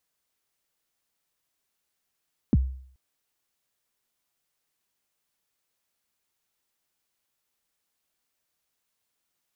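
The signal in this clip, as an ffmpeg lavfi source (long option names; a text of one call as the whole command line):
ffmpeg -f lavfi -i "aevalsrc='0.211*pow(10,-3*t/0.57)*sin(2*PI*(310*0.034/log(65/310)*(exp(log(65/310)*min(t,0.034)/0.034)-1)+65*max(t-0.034,0)))':duration=0.43:sample_rate=44100" out.wav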